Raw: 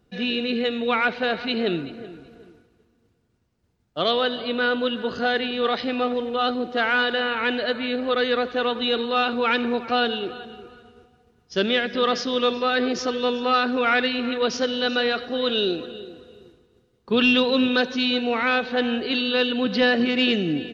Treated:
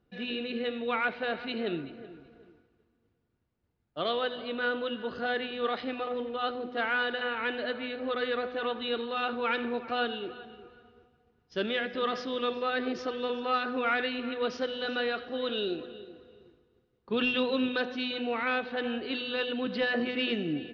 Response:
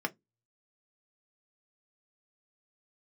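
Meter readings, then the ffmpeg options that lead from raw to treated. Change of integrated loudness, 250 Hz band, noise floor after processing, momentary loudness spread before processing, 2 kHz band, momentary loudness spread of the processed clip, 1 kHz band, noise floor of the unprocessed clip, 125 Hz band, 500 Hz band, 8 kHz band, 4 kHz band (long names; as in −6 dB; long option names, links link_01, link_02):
−9.0 dB, −9.5 dB, −74 dBFS, 6 LU, −8.0 dB, 6 LU, −8.0 dB, −65 dBFS, −9.0 dB, −8.0 dB, can't be measured, −10.5 dB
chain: -filter_complex "[0:a]lowpass=3600,bandreject=frequency=124.3:width_type=h:width=4,bandreject=frequency=248.6:width_type=h:width=4,bandreject=frequency=372.9:width_type=h:width=4,bandreject=frequency=497.2:width_type=h:width=4,bandreject=frequency=621.5:width_type=h:width=4,bandreject=frequency=745.8:width_type=h:width=4,bandreject=frequency=870.1:width_type=h:width=4,bandreject=frequency=994.4:width_type=h:width=4,bandreject=frequency=1118.7:width_type=h:width=4,bandreject=frequency=1243:width_type=h:width=4,bandreject=frequency=1367.3:width_type=h:width=4,bandreject=frequency=1491.6:width_type=h:width=4,bandreject=frequency=1615.9:width_type=h:width=4,bandreject=frequency=1740.2:width_type=h:width=4,bandreject=frequency=1864.5:width_type=h:width=4,bandreject=frequency=1988.8:width_type=h:width=4,bandreject=frequency=2113.1:width_type=h:width=4,bandreject=frequency=2237.4:width_type=h:width=4,bandreject=frequency=2361.7:width_type=h:width=4,bandreject=frequency=2486:width_type=h:width=4,bandreject=frequency=2610.3:width_type=h:width=4,bandreject=frequency=2734.6:width_type=h:width=4,bandreject=frequency=2858.9:width_type=h:width=4,bandreject=frequency=2983.2:width_type=h:width=4,bandreject=frequency=3107.5:width_type=h:width=4,bandreject=frequency=3231.8:width_type=h:width=4,bandreject=frequency=3356.1:width_type=h:width=4,bandreject=frequency=3480.4:width_type=h:width=4,asplit=2[link_01][link_02];[1:a]atrim=start_sample=2205[link_03];[link_02][link_03]afir=irnorm=-1:irlink=0,volume=-21dB[link_04];[link_01][link_04]amix=inputs=2:normalize=0,volume=-8.5dB"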